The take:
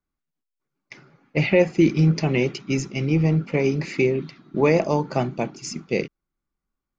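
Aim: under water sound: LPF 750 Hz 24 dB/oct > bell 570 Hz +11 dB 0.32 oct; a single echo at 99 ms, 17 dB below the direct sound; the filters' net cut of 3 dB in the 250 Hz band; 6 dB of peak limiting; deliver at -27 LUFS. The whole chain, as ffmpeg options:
-af "equalizer=f=250:t=o:g=-5.5,alimiter=limit=-13dB:level=0:latency=1,lowpass=f=750:w=0.5412,lowpass=f=750:w=1.3066,equalizer=f=570:t=o:w=0.32:g=11,aecho=1:1:99:0.141,volume=-3dB"

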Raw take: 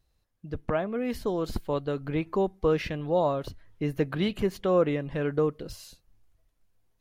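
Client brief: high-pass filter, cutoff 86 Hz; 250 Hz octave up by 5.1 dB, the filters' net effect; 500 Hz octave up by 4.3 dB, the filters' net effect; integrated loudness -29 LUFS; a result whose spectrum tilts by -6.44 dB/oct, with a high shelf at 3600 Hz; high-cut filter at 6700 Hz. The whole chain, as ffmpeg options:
-af "highpass=86,lowpass=6.7k,equalizer=f=250:t=o:g=6,equalizer=f=500:t=o:g=3.5,highshelf=f=3.6k:g=-9,volume=-4.5dB"

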